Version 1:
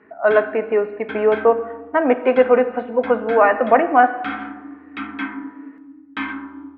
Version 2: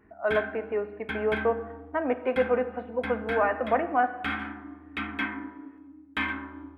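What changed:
speech -11.0 dB; background: remove speaker cabinet 120–5700 Hz, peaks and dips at 270 Hz +9 dB, 570 Hz -4 dB, 880 Hz +4 dB, 1300 Hz +6 dB

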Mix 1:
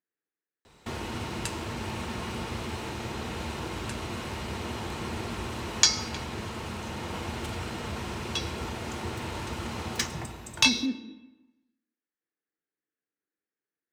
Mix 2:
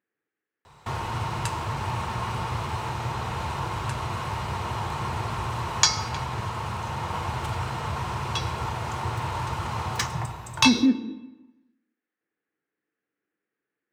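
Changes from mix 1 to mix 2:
speech +10.0 dB; background: add ten-band EQ 125 Hz +12 dB, 250 Hz -9 dB, 1000 Hz +11 dB

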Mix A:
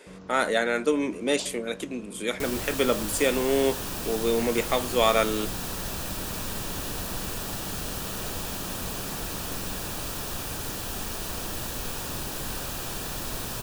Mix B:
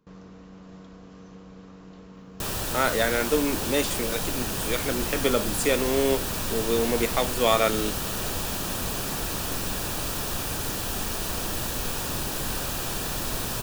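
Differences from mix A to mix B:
speech: entry +2.45 s; second sound +3.5 dB

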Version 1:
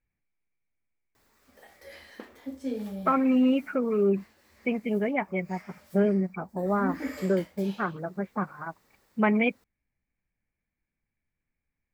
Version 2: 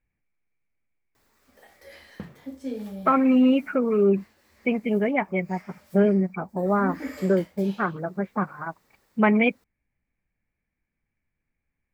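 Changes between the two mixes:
speech +4.0 dB; second sound: remove brick-wall FIR high-pass 220 Hz

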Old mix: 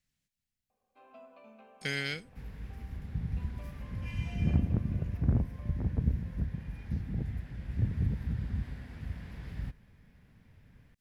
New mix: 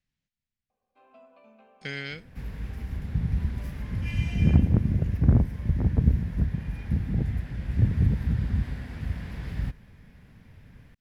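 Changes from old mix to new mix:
speech: add air absorption 110 m; second sound +8.0 dB; reverb: off

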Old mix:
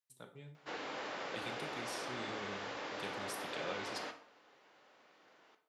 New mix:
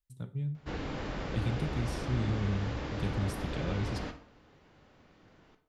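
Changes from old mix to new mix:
speech: send -6.5 dB; master: remove HPF 530 Hz 12 dB/oct

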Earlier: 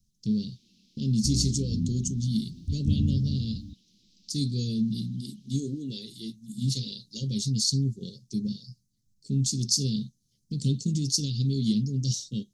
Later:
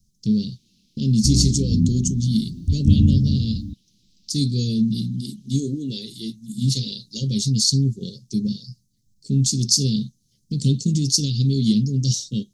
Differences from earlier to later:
speech +7.0 dB; second sound +10.5 dB

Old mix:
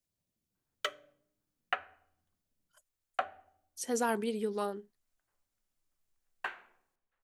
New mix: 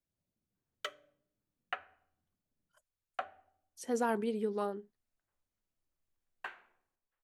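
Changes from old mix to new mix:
speech: add high shelf 2500 Hz -9.5 dB; background -5.5 dB

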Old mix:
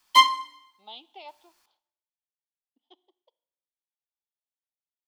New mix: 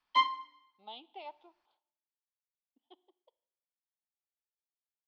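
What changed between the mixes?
background -8.5 dB; master: add air absorption 260 m

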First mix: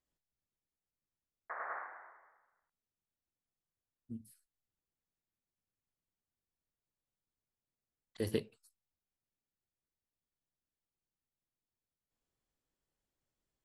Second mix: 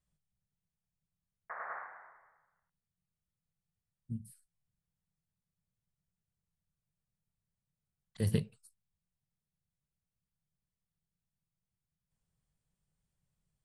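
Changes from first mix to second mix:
speech: add bell 9000 Hz +11.5 dB 0.26 oct; master: add resonant low shelf 220 Hz +8.5 dB, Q 3

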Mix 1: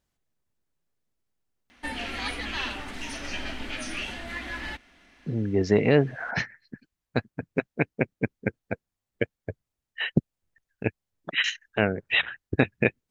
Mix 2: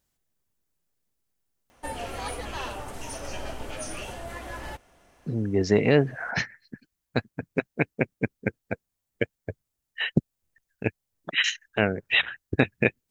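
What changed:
background: add graphic EQ 125/250/500/1000/2000/4000 Hz +8/-9/+8/+3/-9/-9 dB; master: add high shelf 6400 Hz +10.5 dB

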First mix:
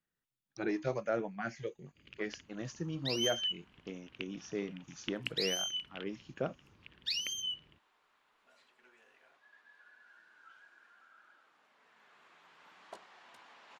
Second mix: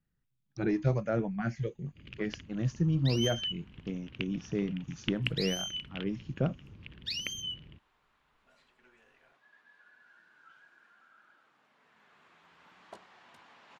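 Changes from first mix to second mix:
speech: add low shelf 170 Hz +9.5 dB; first sound +5.5 dB; master: add tone controls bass +10 dB, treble -2 dB

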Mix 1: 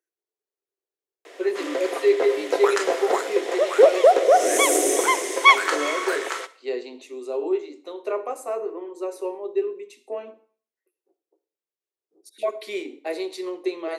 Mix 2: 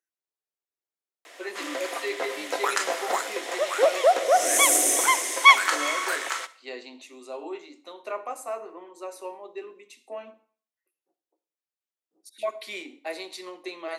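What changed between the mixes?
background: add high shelf 8300 Hz +7 dB; master: add bell 410 Hz -15 dB 0.74 oct

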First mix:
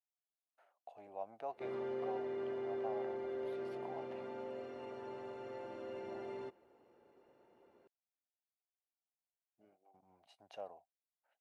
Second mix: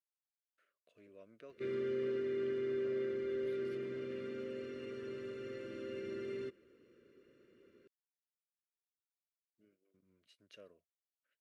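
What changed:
background +5.5 dB; master: add Butterworth band-stop 800 Hz, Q 0.8

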